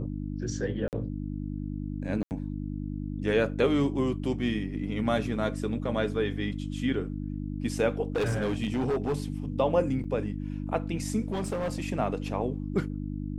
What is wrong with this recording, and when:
mains hum 50 Hz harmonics 6 −34 dBFS
0:00.88–0:00.93: drop-out 48 ms
0:02.23–0:02.31: drop-out 79 ms
0:08.16–0:09.16: clipping −23.5 dBFS
0:10.04–0:10.05: drop-out 5.9 ms
0:11.32–0:11.82: clipping −26.5 dBFS

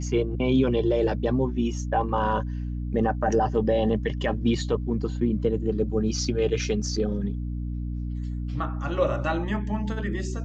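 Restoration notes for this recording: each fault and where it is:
mains hum 60 Hz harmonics 5 −30 dBFS

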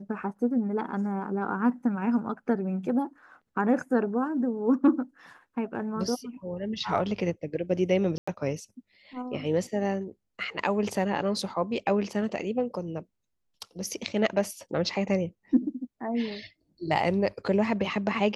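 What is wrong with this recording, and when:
0:08.18–0:08.28: drop-out 95 ms

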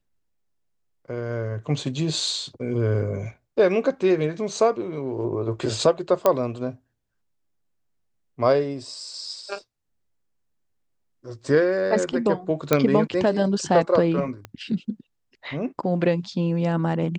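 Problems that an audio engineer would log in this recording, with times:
0:06.26: click −6 dBFS
0:12.73: click −4 dBFS
0:14.45: click −21 dBFS

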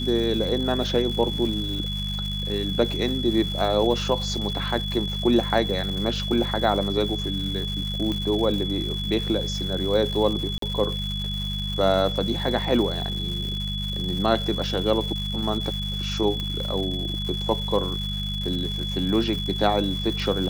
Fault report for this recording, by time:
surface crackle 300 per second −31 dBFS
mains hum 50 Hz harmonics 4 −30 dBFS
whistle 3,400 Hz −30 dBFS
0:08.12: click −16 dBFS
0:10.58–0:10.62: drop-out 43 ms
0:16.40: click −17 dBFS

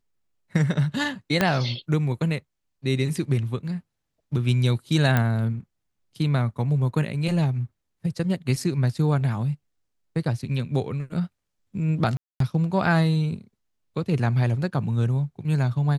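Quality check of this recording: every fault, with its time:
0:01.41: click −6 dBFS
0:05.17: click −9 dBFS
0:12.17–0:12.40: drop-out 233 ms

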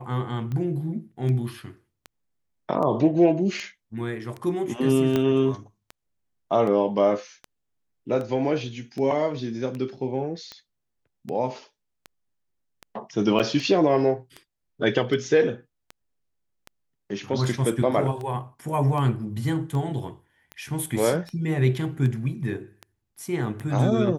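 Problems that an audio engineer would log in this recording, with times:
scratch tick 78 rpm −22 dBFS
0:05.16: click −11 dBFS
0:13.39–0:13.40: drop-out 7.4 ms

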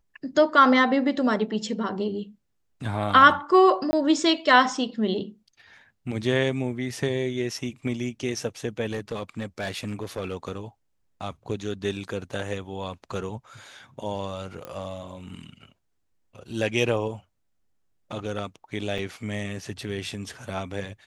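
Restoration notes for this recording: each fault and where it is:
0:03.91–0:03.93: drop-out 20 ms
0:08.91–0:10.36: clipping −24.5 dBFS
0:14.65: click −21 dBFS
0:18.98: drop-out 4.7 ms

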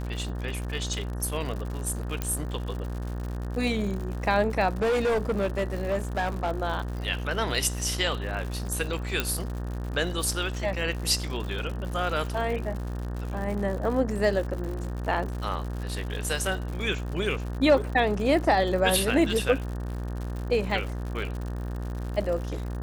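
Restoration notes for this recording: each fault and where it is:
mains buzz 60 Hz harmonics 31 −32 dBFS
surface crackle 130 per second −34 dBFS
0:02.22: click −14 dBFS
0:04.82–0:06.52: clipping −21.5 dBFS
0:09.20: click −9 dBFS

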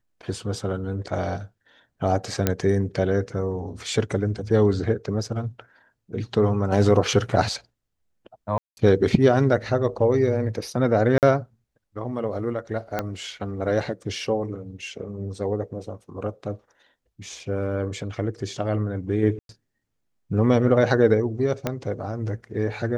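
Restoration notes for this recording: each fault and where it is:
0:02.47: click −5 dBFS
0:08.58–0:08.77: drop-out 190 ms
0:11.18–0:11.23: drop-out 48 ms
0:12.99: click −11 dBFS
0:19.39–0:19.49: drop-out 102 ms
0:21.67: click −10 dBFS

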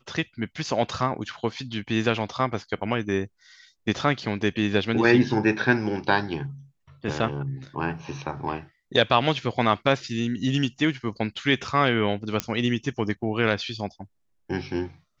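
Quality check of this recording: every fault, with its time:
0:12.40: click −8 dBFS

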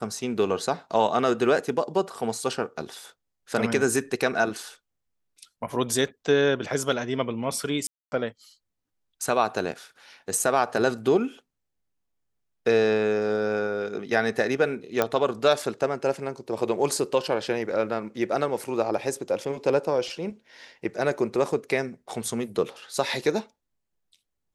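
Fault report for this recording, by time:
0:07.87–0:08.12: drop-out 250 ms
0:15.02: click −8 dBFS

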